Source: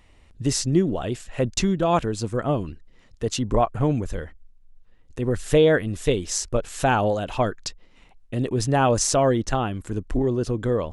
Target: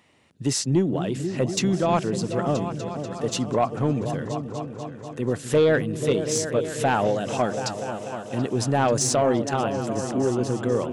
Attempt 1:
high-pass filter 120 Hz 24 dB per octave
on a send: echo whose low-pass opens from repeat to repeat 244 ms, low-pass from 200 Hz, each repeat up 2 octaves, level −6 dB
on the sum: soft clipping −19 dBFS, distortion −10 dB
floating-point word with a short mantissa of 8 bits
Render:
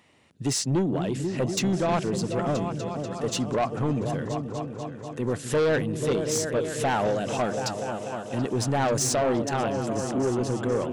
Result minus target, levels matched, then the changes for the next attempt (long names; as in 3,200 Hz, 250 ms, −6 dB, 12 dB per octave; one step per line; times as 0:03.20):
soft clipping: distortion +8 dB
change: soft clipping −11 dBFS, distortion −18 dB